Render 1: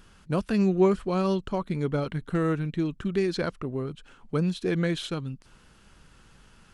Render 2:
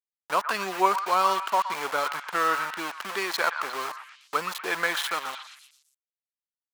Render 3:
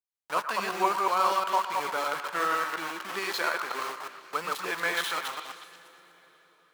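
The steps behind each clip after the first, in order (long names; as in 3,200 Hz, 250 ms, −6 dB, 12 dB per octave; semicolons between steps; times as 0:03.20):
centre clipping without the shift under −34 dBFS; high-pass with resonance 970 Hz, resonance Q 2; echo through a band-pass that steps 119 ms, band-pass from 1,300 Hz, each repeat 0.7 octaves, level −7 dB; level +6.5 dB
delay that plays each chunk backwards 120 ms, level −1.5 dB; on a send at −15.5 dB: convolution reverb RT60 5.0 s, pre-delay 9 ms; on the sum: level −4.5 dB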